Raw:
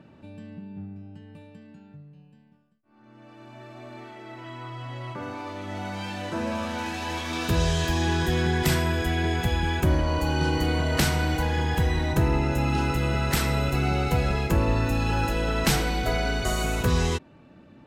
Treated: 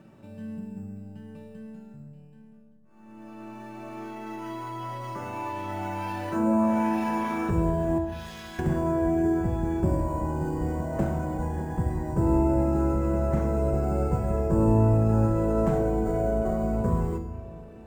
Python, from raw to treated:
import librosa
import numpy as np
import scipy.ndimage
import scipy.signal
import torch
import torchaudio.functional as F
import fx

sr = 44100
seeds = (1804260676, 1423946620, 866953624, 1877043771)

p1 = fx.differentiator(x, sr, at=(7.98, 8.59))
p2 = fx.env_lowpass_down(p1, sr, base_hz=740.0, full_db=-24.0)
p3 = fx.sample_hold(p2, sr, seeds[0], rate_hz=7800.0, jitter_pct=0)
p4 = p2 + (p3 * 10.0 ** (-5.0 / 20.0))
p5 = fx.comb_fb(p4, sr, f0_hz=110.0, decay_s=0.79, harmonics='all', damping=0.0, mix_pct=80)
p6 = p5 + fx.echo_wet_lowpass(p5, sr, ms=604, feedback_pct=58, hz=1000.0, wet_db=-19.5, dry=0)
p7 = fx.room_shoebox(p6, sr, seeds[1], volume_m3=2600.0, walls='furnished', distance_m=1.1)
y = p7 * 10.0 ** (5.5 / 20.0)